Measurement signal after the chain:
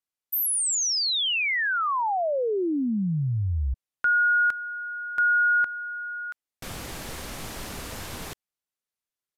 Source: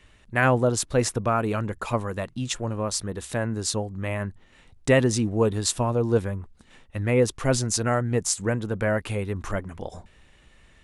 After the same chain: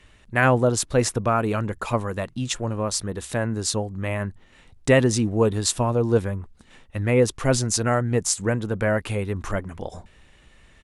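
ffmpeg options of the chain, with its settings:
-af "aresample=32000,aresample=44100,volume=1.26"

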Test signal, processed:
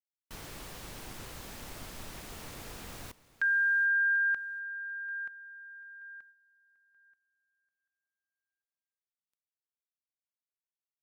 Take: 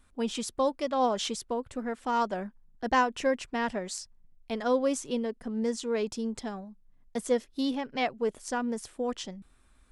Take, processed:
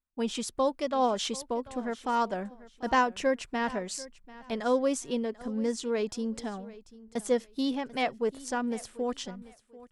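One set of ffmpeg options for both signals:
-filter_complex "[0:a]agate=range=0.0316:threshold=0.00158:ratio=16:detection=peak,asplit=2[s0][s1];[s1]aecho=0:1:741|1482:0.112|0.0281[s2];[s0][s2]amix=inputs=2:normalize=0"

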